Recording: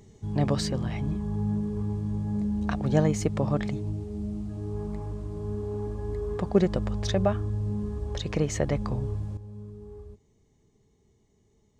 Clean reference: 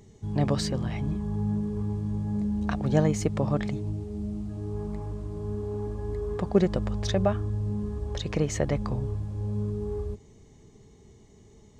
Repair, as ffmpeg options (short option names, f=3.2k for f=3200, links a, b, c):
-af "asetnsamples=n=441:p=0,asendcmd='9.37 volume volume 12dB',volume=0dB"